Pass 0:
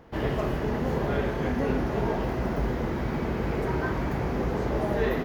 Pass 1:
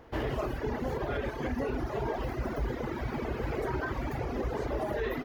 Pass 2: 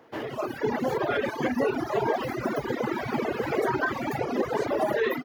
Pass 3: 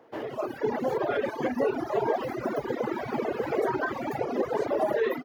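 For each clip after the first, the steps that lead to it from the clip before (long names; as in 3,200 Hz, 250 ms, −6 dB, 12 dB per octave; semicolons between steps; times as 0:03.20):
reverb reduction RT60 2 s; parametric band 180 Hz −15 dB 0.33 octaves; brickwall limiter −23 dBFS, peak gain reduction 7 dB
Bessel high-pass filter 190 Hz, order 4; reverb reduction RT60 1.6 s; automatic gain control gain up to 10 dB
parametric band 540 Hz +6.5 dB 2 octaves; level −6 dB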